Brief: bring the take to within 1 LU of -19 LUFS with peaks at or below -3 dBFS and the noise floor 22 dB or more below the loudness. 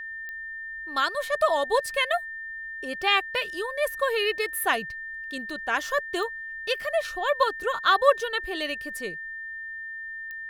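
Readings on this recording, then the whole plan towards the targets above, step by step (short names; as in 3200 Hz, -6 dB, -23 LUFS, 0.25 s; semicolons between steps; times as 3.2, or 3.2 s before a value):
clicks 4; steady tone 1800 Hz; tone level -34 dBFS; loudness -27.0 LUFS; peak -6.0 dBFS; loudness target -19.0 LUFS
-> de-click; notch 1800 Hz, Q 30; gain +8 dB; limiter -3 dBFS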